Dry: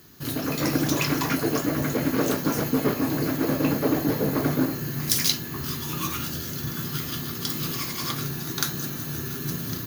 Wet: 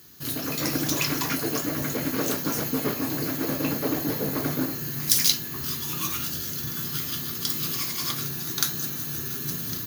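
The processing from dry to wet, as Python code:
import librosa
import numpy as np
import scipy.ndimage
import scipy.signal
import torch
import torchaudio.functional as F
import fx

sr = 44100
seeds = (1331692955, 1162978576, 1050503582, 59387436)

y = fx.high_shelf(x, sr, hz=2500.0, db=8.0)
y = F.gain(torch.from_numpy(y), -4.5).numpy()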